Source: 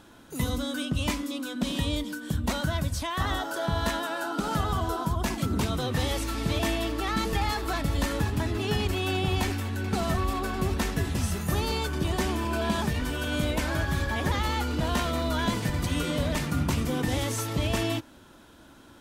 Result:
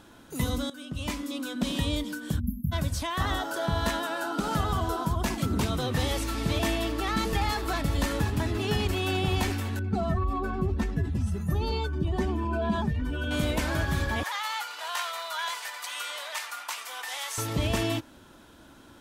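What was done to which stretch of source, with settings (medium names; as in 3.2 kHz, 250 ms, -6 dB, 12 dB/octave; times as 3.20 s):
0.70–1.41 s: fade in, from -16 dB
2.40–2.72 s: spectral selection erased 260–11000 Hz
9.79–13.31 s: spectral contrast enhancement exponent 1.6
14.23–17.38 s: high-pass 840 Hz 24 dB/octave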